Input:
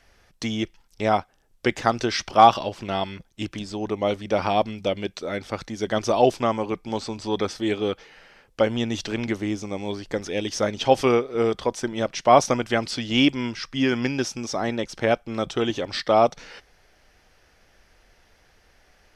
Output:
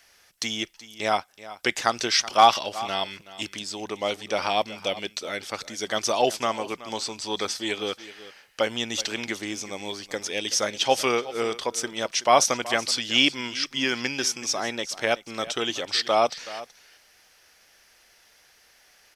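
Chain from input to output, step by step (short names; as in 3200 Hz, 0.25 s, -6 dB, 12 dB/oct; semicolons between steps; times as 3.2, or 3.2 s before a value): tilt +3.5 dB/oct; echo 0.376 s -16.5 dB; gain -1.5 dB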